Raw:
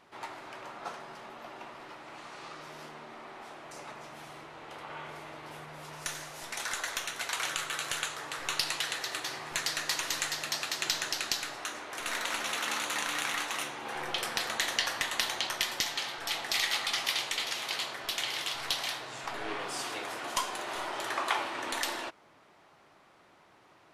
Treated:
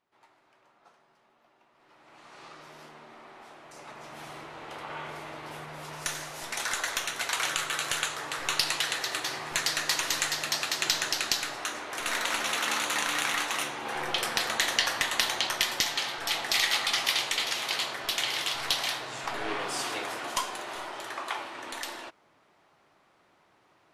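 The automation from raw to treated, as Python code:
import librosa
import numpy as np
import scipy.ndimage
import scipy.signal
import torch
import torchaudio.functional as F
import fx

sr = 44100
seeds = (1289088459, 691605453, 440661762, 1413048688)

y = fx.gain(x, sr, db=fx.line((1.69, -20.0), (2.0, -10.5), (2.41, -3.0), (3.72, -3.0), (4.25, 4.0), (19.98, 4.0), (21.15, -4.0)))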